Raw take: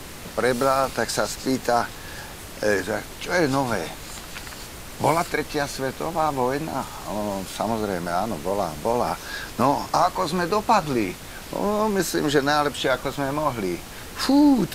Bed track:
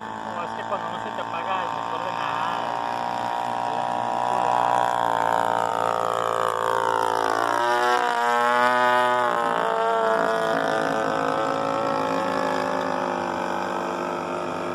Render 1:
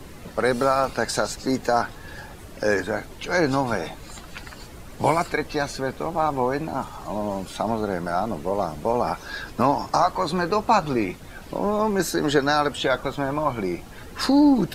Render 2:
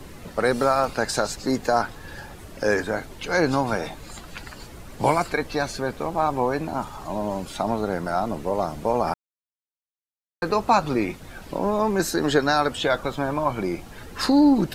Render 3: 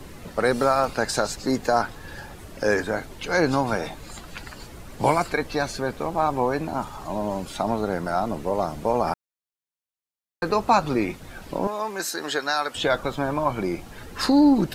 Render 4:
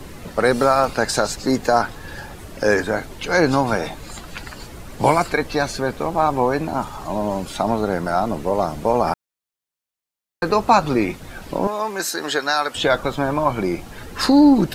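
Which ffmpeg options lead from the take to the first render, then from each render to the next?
-af "afftdn=nr=10:nf=-38"
-filter_complex "[0:a]asplit=3[s0][s1][s2];[s0]atrim=end=9.14,asetpts=PTS-STARTPTS,afade=t=out:st=9.136:d=0.004:c=hsin[s3];[s1]atrim=start=9.14:end=10.42,asetpts=PTS-STARTPTS,volume=0[s4];[s2]atrim=start=10.42,asetpts=PTS-STARTPTS,afade=t=in:d=0.004:c=hsin[s5];[s3][s4][s5]concat=n=3:v=0:a=1"
-filter_complex "[0:a]asettb=1/sr,asplit=3[s0][s1][s2];[s0]atrim=end=11.674[s3];[s1]atrim=start=11.67:end=12.75,asetpts=PTS-STARTPTS,afade=t=in:d=0.004:c=qsin,afade=t=out:st=1.076:d=0.004:c=qsin,highpass=f=1100:p=1[s4];[s2]atrim=start=12.746[s5];[s3][s4]acrossfade=d=0.004:c1=hsin:c2=qsin[s6];[s6][s5]acrossfade=d=0.004:c1=qsin:c2=hsin"
-af "volume=1.68,alimiter=limit=0.708:level=0:latency=1"

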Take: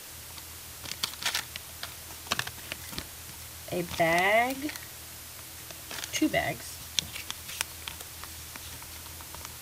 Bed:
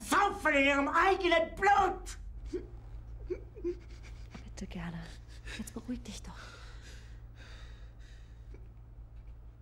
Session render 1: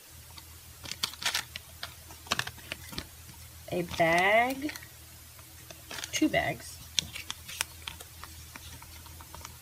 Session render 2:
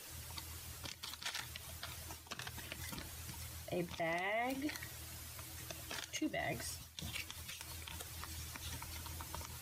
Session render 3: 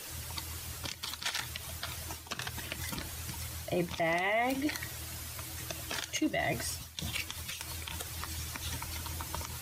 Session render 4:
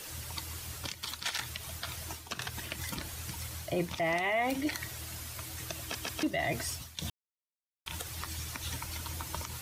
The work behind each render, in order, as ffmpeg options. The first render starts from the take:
-af "afftdn=nr=9:nf=-44"
-af "areverse,acompressor=threshold=0.0178:ratio=6,areverse,alimiter=level_in=2:limit=0.0631:level=0:latency=1:release=79,volume=0.501"
-af "volume=2.51"
-filter_complex "[0:a]asplit=6[s0][s1][s2][s3][s4][s5];[s0]atrim=end=5.952[s6];[s1]atrim=start=5.808:end=5.952[s7];[s2]atrim=start=5.808:end=5.952[s8];[s3]atrim=start=6.228:end=7.1,asetpts=PTS-STARTPTS,afade=t=out:st=0.868:d=0.004:c=hsin[s9];[s4]atrim=start=7.1:end=7.86,asetpts=PTS-STARTPTS,volume=0[s10];[s5]atrim=start=7.86,asetpts=PTS-STARTPTS,afade=t=in:d=0.004:c=hsin[s11];[s6][s7]acrossfade=d=0.004:c1=hsin:c2=hsin[s12];[s12][s8]acrossfade=d=0.004:c1=hsin:c2=hsin[s13];[s9][s10][s11]concat=n=3:v=0:a=1[s14];[s13][s14]acrossfade=d=0.004:c1=hsin:c2=hsin"

